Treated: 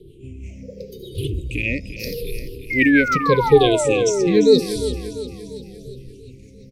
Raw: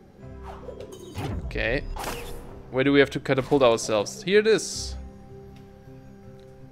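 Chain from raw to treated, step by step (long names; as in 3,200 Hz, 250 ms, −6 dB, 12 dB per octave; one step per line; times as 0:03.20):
rippled gain that drifts along the octave scale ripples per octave 0.63, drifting −0.84 Hz, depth 22 dB
elliptic band-stop filter 490–2,400 Hz, stop band 40 dB
sound drawn into the spectrogram fall, 0:02.70–0:04.60, 240–2,200 Hz −21 dBFS
rotating-speaker cabinet horn 6.3 Hz
repeating echo 346 ms, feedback 53%, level −12 dB
level +3 dB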